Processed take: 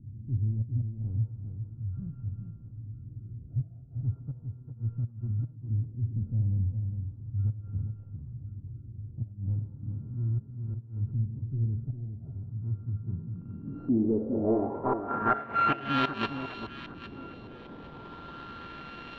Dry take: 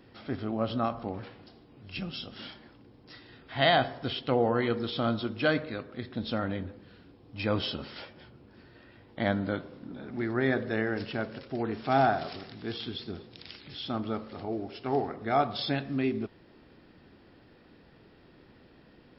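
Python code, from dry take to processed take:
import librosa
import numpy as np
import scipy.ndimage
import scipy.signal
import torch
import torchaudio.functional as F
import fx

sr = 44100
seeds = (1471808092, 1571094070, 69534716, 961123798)

y = np.r_[np.sort(x[:len(x) // 32 * 32].reshape(-1, 32), axis=1).ravel(), x[len(x) // 32 * 32:]]
y = fx.peak_eq(y, sr, hz=1400.0, db=5.5, octaves=1.1)
y = fx.notch(y, sr, hz=1100.0, q=21.0)
y = fx.gate_flip(y, sr, shuts_db=-16.0, range_db=-29)
y = np.clip(10.0 ** (25.5 / 20.0) * y, -1.0, 1.0) / 10.0 ** (25.5 / 20.0)
y = fx.filter_lfo_lowpass(y, sr, shape='saw_up', hz=0.36, low_hz=260.0, high_hz=4100.0, q=1.3)
y = fx.power_curve(y, sr, exponent=0.7)
y = fx.filter_sweep_lowpass(y, sr, from_hz=110.0, to_hz=3600.0, start_s=12.95, end_s=15.99, q=3.7)
y = fx.echo_alternate(y, sr, ms=403, hz=1100.0, feedback_pct=52, wet_db=-7.0)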